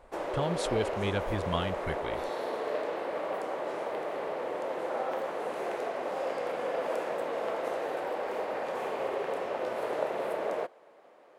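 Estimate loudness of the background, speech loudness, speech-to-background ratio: -34.0 LUFS, -34.5 LUFS, -0.5 dB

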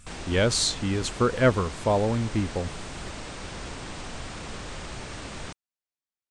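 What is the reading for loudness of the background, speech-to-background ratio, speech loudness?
-38.0 LUFS, 13.0 dB, -25.0 LUFS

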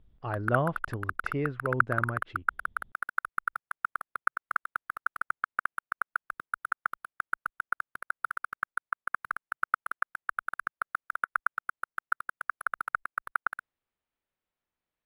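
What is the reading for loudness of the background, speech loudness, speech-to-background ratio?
-34.0 LUFS, -33.5 LUFS, 0.5 dB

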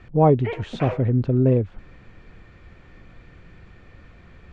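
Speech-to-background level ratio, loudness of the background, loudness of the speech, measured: 13.0 dB, -34.0 LUFS, -21.0 LUFS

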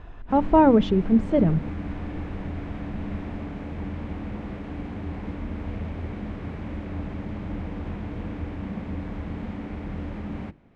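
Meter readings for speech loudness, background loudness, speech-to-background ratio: -20.5 LUFS, -34.0 LUFS, 13.5 dB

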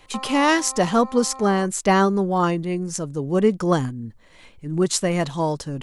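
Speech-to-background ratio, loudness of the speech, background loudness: 16.5 dB, -21.0 LUFS, -37.5 LUFS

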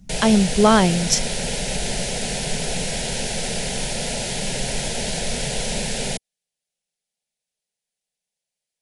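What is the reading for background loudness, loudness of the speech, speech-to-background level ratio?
-25.0 LUFS, -17.5 LUFS, 7.5 dB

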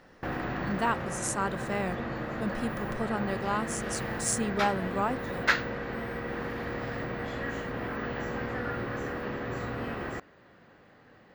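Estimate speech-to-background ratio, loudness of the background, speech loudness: 1.5 dB, -34.0 LUFS, -32.5 LUFS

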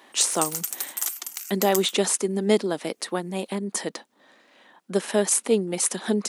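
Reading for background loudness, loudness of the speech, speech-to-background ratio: -29.0 LUFS, -24.5 LUFS, 4.5 dB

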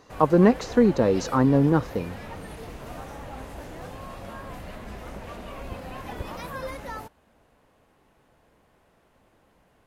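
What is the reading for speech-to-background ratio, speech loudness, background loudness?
18.0 dB, -20.5 LUFS, -38.5 LUFS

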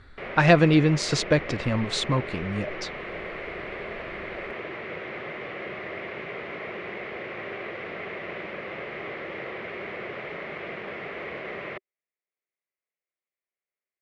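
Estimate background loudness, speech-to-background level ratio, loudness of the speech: -35.5 LUFS, 12.5 dB, -23.0 LUFS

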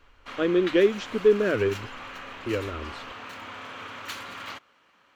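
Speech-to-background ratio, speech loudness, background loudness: 14.0 dB, -24.5 LUFS, -38.5 LUFS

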